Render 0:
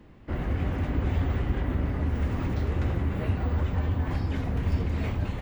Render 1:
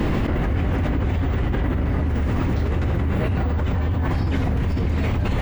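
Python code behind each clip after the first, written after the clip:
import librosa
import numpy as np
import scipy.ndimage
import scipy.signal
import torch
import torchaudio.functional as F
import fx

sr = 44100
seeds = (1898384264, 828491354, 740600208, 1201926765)

y = fx.env_flatten(x, sr, amount_pct=100)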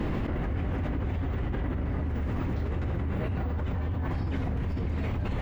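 y = fx.high_shelf(x, sr, hz=4200.0, db=-7.0)
y = y * 10.0 ** (-8.5 / 20.0)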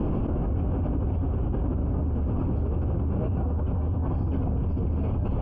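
y = np.convolve(x, np.full(23, 1.0 / 23))[:len(x)]
y = y * 10.0 ** (4.0 / 20.0)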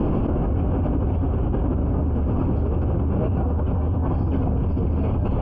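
y = fx.low_shelf(x, sr, hz=210.0, db=-3.5)
y = y * 10.0 ** (7.0 / 20.0)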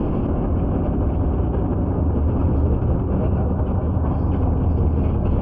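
y = fx.echo_bbd(x, sr, ms=187, stages=2048, feedback_pct=81, wet_db=-6.5)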